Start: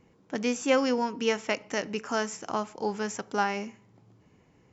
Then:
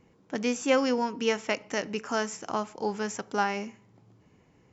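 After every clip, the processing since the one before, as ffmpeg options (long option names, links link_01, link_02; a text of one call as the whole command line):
ffmpeg -i in.wav -af anull out.wav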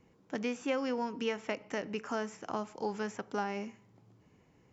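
ffmpeg -i in.wav -filter_complex "[0:a]acrossover=split=640|3400[link_01][link_02][link_03];[link_01]acompressor=threshold=-29dB:ratio=4[link_04];[link_02]acompressor=threshold=-33dB:ratio=4[link_05];[link_03]acompressor=threshold=-52dB:ratio=4[link_06];[link_04][link_05][link_06]amix=inputs=3:normalize=0,volume=-3.5dB" out.wav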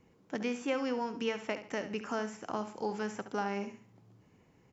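ffmpeg -i in.wav -af "aecho=1:1:70|140|210:0.282|0.0874|0.0271" out.wav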